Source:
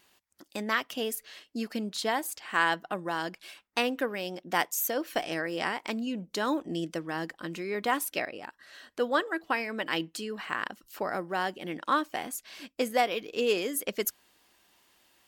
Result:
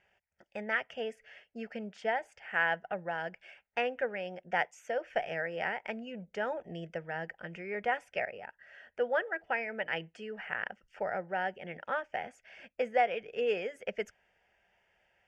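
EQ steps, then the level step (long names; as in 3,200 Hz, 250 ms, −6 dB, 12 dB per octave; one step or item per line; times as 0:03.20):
Bessel low-pass filter 3,100 Hz, order 4
phaser with its sweep stopped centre 1,100 Hz, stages 6
0.0 dB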